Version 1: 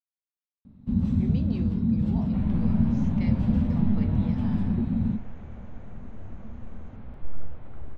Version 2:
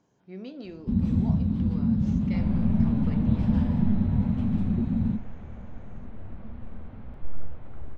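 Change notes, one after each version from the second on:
speech: entry -0.90 s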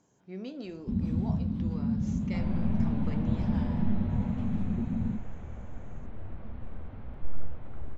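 speech: remove LPF 5500 Hz 24 dB/oct; first sound -5.5 dB

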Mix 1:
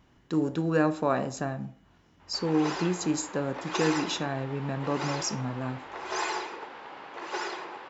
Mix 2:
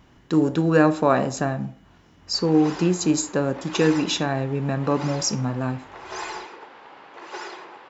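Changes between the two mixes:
speech +7.5 dB; reverb: off

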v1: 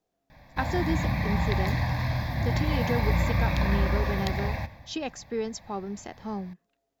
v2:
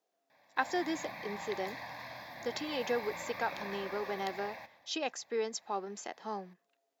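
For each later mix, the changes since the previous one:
background -10.0 dB; master: add HPF 430 Hz 12 dB/oct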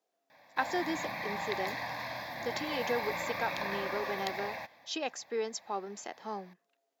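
background +9.0 dB; reverb: off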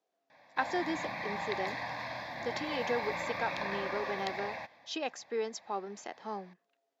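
master: add air absorption 62 m

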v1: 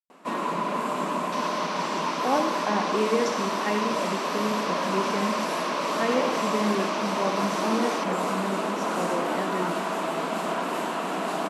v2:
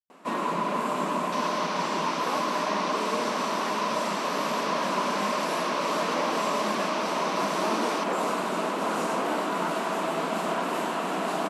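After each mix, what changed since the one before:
speech -11.0 dB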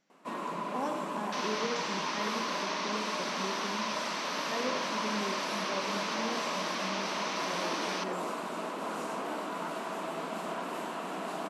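speech: entry -1.50 s; first sound -8.5 dB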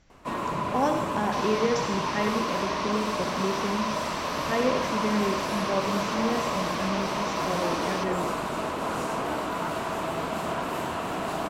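speech +10.5 dB; first sound +6.5 dB; master: remove brick-wall FIR band-pass 160–13000 Hz

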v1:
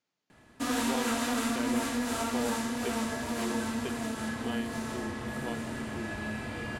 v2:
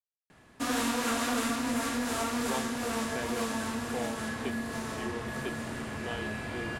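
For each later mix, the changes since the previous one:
speech: entry +1.60 s; reverb: off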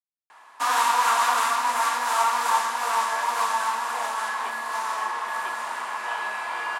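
background +5.0 dB; master: add resonant high-pass 960 Hz, resonance Q 4.9

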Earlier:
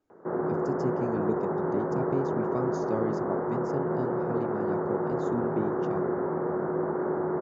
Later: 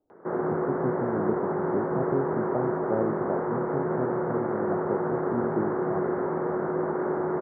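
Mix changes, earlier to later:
speech: add synth low-pass 680 Hz, resonance Q 1.6; background: remove air absorption 480 m

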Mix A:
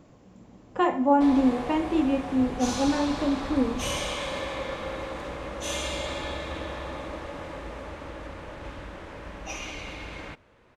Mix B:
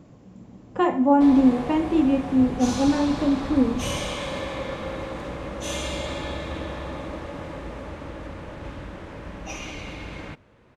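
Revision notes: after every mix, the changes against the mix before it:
master: add bell 150 Hz +7 dB 2.4 oct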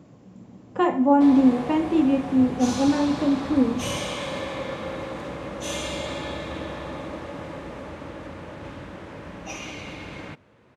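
master: add HPF 91 Hz 12 dB/oct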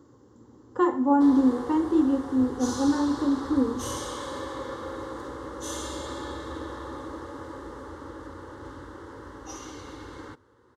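master: add fixed phaser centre 660 Hz, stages 6

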